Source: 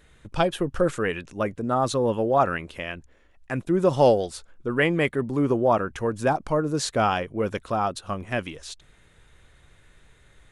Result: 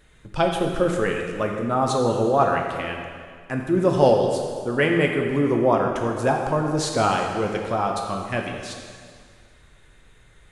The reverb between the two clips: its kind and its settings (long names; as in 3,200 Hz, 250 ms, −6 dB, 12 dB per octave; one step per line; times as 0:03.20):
dense smooth reverb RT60 2 s, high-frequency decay 0.9×, DRR 1.5 dB